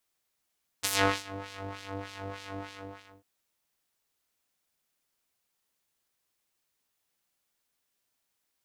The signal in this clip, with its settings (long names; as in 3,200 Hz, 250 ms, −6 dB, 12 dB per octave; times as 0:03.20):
subtractive patch with filter wobble G2, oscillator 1 square, oscillator 2 saw, oscillator 2 level −6 dB, filter bandpass, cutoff 950 Hz, Q 0.85, filter envelope 2.5 octaves, filter decay 0.52 s, filter sustain 25%, attack 17 ms, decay 0.39 s, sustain −23 dB, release 0.65 s, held 1.75 s, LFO 3.3 Hz, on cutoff 1.5 octaves